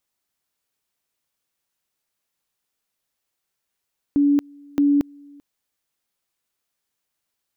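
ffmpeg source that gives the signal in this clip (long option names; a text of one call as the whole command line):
ffmpeg -f lavfi -i "aevalsrc='pow(10,(-13.5-28.5*gte(mod(t,0.62),0.23))/20)*sin(2*PI*286*t)':duration=1.24:sample_rate=44100" out.wav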